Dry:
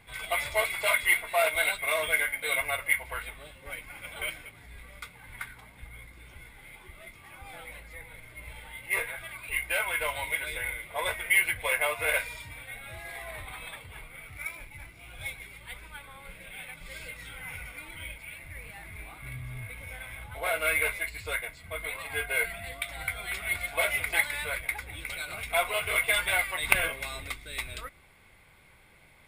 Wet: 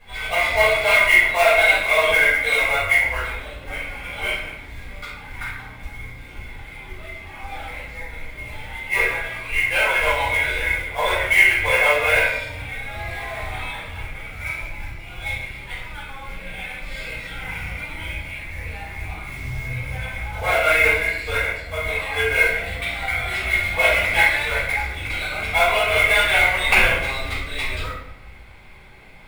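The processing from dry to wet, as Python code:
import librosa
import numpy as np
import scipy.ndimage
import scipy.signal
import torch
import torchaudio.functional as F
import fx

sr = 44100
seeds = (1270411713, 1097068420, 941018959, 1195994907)

y = scipy.signal.sosfilt(scipy.signal.butter(2, 6100.0, 'lowpass', fs=sr, output='sos'), x)
y = fx.quant_float(y, sr, bits=2)
y = fx.room_shoebox(y, sr, seeds[0], volume_m3=250.0, walls='mixed', distance_m=5.5)
y = F.gain(torch.from_numpy(y), -3.0).numpy()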